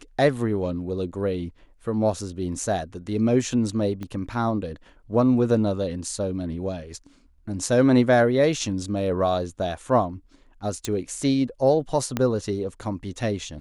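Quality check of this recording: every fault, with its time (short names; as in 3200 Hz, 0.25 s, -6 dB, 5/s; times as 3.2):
4.03 pop -21 dBFS
10.85 pop -13 dBFS
12.17 pop -10 dBFS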